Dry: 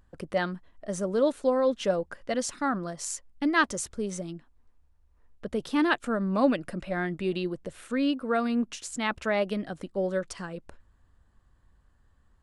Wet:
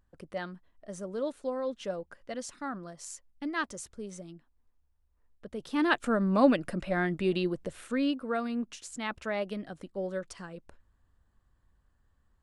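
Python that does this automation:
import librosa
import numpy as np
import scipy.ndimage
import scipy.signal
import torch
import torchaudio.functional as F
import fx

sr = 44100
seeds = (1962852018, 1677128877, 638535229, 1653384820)

y = fx.gain(x, sr, db=fx.line((5.54, -9.0), (6.0, 1.0), (7.63, 1.0), (8.48, -6.0)))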